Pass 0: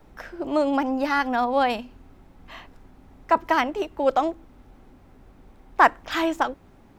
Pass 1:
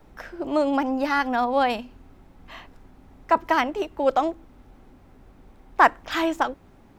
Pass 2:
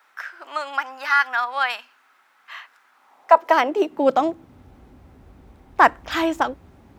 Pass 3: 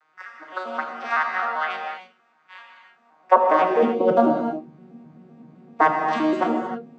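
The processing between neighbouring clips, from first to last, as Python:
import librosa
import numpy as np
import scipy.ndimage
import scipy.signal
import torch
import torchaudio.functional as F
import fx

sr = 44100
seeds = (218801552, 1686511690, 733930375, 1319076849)

y1 = x
y2 = fx.filter_sweep_highpass(y1, sr, from_hz=1400.0, to_hz=62.0, start_s=2.89, end_s=4.78, q=2.2)
y2 = y2 * librosa.db_to_amplitude(2.0)
y3 = fx.vocoder_arp(y2, sr, chord='minor triad', root=51, every_ms=129)
y3 = fx.rev_gated(y3, sr, seeds[0], gate_ms=330, shape='flat', drr_db=1.5)
y3 = y3 * librosa.db_to_amplitude(-1.0)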